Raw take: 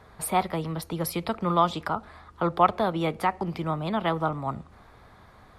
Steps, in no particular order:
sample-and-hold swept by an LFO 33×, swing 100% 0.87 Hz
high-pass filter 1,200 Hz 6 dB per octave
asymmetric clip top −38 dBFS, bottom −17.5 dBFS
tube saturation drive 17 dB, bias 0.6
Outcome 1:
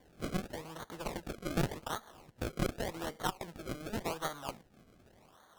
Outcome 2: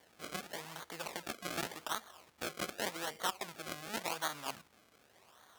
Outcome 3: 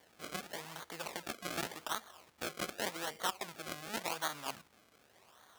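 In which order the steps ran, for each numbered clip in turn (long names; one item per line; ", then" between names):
high-pass filter, then asymmetric clip, then sample-and-hold swept by an LFO, then tube saturation
asymmetric clip, then sample-and-hold swept by an LFO, then tube saturation, then high-pass filter
asymmetric clip, then tube saturation, then sample-and-hold swept by an LFO, then high-pass filter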